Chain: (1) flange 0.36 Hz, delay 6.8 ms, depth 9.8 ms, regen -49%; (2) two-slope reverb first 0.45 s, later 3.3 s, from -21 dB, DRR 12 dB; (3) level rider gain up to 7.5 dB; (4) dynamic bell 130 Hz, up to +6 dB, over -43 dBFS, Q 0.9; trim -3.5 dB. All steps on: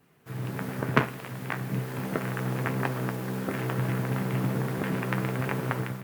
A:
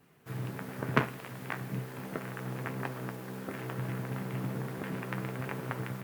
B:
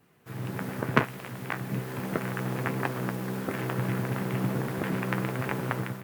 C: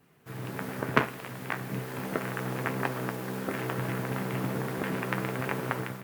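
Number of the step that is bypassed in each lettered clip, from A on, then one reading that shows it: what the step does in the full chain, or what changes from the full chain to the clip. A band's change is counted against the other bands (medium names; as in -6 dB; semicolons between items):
3, momentary loudness spread change +2 LU; 2, 125 Hz band -2.0 dB; 4, crest factor change +2.0 dB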